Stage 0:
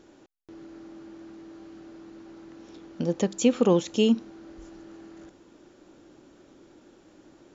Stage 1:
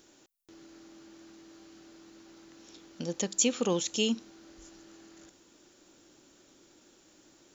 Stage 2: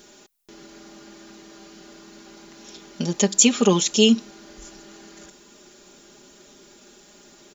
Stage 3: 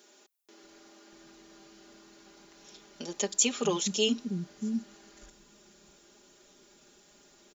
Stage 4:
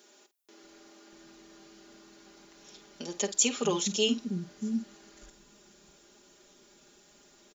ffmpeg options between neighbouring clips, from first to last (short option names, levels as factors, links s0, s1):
-af "crystalizer=i=6.5:c=0,volume=0.355"
-af "aecho=1:1:4.9:0.86,volume=2.66"
-filter_complex "[0:a]acrossover=split=240[s0][s1];[s0]adelay=640[s2];[s2][s1]amix=inputs=2:normalize=0,volume=0.355"
-filter_complex "[0:a]asplit=2[s0][s1];[s1]adelay=49,volume=0.211[s2];[s0][s2]amix=inputs=2:normalize=0"